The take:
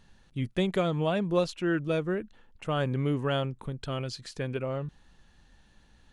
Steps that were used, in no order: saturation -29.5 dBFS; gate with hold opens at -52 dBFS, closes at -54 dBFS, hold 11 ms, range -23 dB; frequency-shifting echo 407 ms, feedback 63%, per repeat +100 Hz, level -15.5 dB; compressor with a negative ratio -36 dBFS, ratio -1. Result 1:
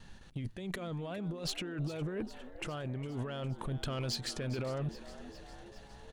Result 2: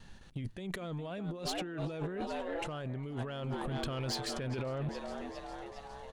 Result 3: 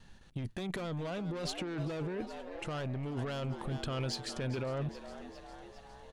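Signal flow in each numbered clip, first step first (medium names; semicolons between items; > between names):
gate with hold > compressor with a negative ratio > saturation > frequency-shifting echo; gate with hold > frequency-shifting echo > compressor with a negative ratio > saturation; saturation > frequency-shifting echo > gate with hold > compressor with a negative ratio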